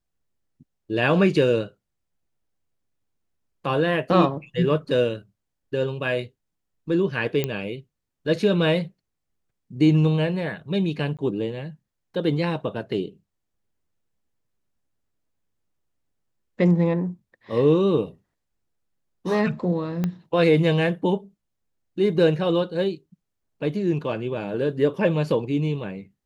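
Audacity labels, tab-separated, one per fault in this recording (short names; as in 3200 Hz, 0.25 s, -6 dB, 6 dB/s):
7.440000	7.440000	pop -11 dBFS
11.170000	11.190000	gap 17 ms
20.040000	20.040000	pop -13 dBFS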